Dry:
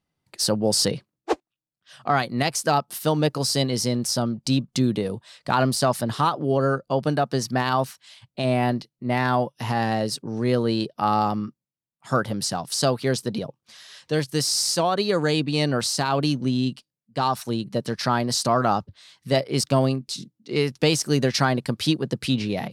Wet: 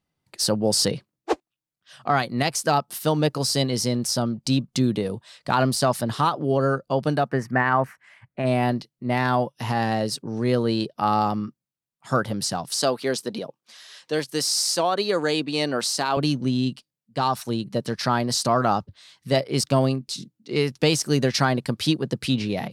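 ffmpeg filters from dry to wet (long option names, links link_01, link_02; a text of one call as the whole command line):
ffmpeg -i in.wav -filter_complex "[0:a]asplit=3[link_01][link_02][link_03];[link_01]afade=type=out:start_time=7.28:duration=0.02[link_04];[link_02]highshelf=frequency=2700:width_type=q:width=3:gain=-12,afade=type=in:start_time=7.28:duration=0.02,afade=type=out:start_time=8.45:duration=0.02[link_05];[link_03]afade=type=in:start_time=8.45:duration=0.02[link_06];[link_04][link_05][link_06]amix=inputs=3:normalize=0,asettb=1/sr,asplit=3[link_07][link_08][link_09];[link_07]atrim=end=12.814[link_10];[link_08]atrim=start=12.81:end=16.17,asetpts=PTS-STARTPTS,afade=type=in:duration=0.004:curve=qsin,afade=type=out:start_time=3.356:duration=0.004:curve=qsin,highpass=250[link_11];[link_09]atrim=start=16.166[link_12];[link_10][link_11]acrossfade=duration=0.004:curve1=hsin:curve2=qsin[link_13];[link_13][link_12]acrossfade=duration=0.004:curve1=qsin:curve2=hsin" out.wav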